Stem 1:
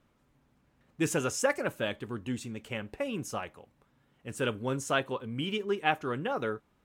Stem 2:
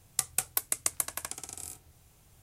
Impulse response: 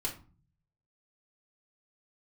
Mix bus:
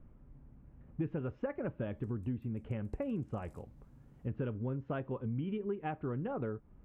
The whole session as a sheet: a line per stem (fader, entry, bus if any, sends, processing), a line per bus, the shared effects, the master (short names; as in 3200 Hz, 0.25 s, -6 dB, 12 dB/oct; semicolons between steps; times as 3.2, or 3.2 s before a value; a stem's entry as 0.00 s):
-1.5 dB, 0.00 s, no send, LPF 3000 Hz 24 dB/oct; tilt -4.5 dB/oct
-17.5 dB, 1.85 s, no send, compressor, threshold -36 dBFS, peak gain reduction 13.5 dB; limiter -29 dBFS, peak gain reduction 14 dB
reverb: off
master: bell 11000 Hz -9.5 dB 1.5 oct; compressor 6:1, threshold -34 dBFS, peak gain reduction 16 dB